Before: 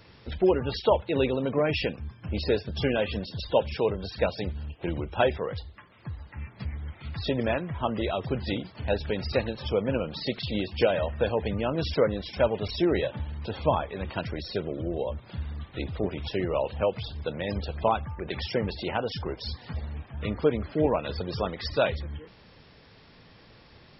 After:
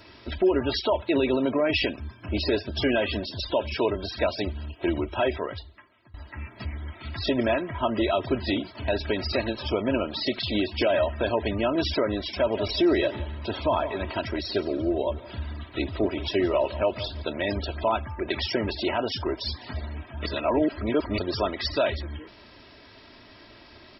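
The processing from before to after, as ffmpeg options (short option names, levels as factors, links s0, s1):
-filter_complex "[0:a]asettb=1/sr,asplit=3[s0][s1][s2];[s0]atrim=end=12.354[s3];[s1]atrim=start=12.35:end=17.22,asetpts=PTS-STARTPTS,afade=t=in:d=0.004:c=qsin,afade=t=out:st=4.866:d=0.004:c=qsin,aecho=1:1:171|342:0.126|0.034,atrim=end_sample=214767[s4];[s2]atrim=start=17.216[s5];[s3][s4]acrossfade=d=0.004:c1=hsin:c2=qsin[s6];[s6][s5]acrossfade=d=0.004:c1=qsin:c2=hsin,asplit=4[s7][s8][s9][s10];[s7]atrim=end=6.14,asetpts=PTS-STARTPTS,afade=t=out:st=5.28:d=0.86:silence=0.0668344[s11];[s8]atrim=start=6.14:end=20.262,asetpts=PTS-STARTPTS,afade=t=in:d=0.004:c=hsin:silence=0.0668344[s12];[s9]atrim=start=20.258:end=21.182,asetpts=PTS-STARTPTS,areverse[s13];[s10]atrim=start=21.178[s14];[s11][s12]concat=n=2:v=0:a=1[s15];[s15][s13]acrossfade=d=0.004:c1=hsin:c2=hsin[s16];[s16][s14]acrossfade=d=0.004:c1=hsin:c2=hsin,lowshelf=f=95:g=-9,aecho=1:1:3.1:0.7,alimiter=limit=0.126:level=0:latency=1:release=61,volume=1.58"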